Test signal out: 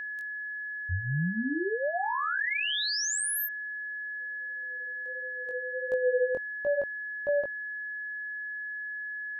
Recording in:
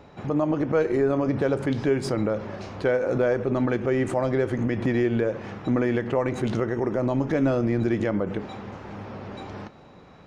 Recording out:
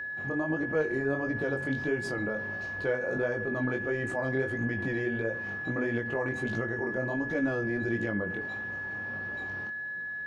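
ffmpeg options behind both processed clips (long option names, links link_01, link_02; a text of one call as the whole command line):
ffmpeg -i in.wav -af "flanger=delay=17:depth=6.1:speed=1.5,aeval=exprs='val(0)+0.0355*sin(2*PI*1700*n/s)':channel_layout=same,volume=-5dB" out.wav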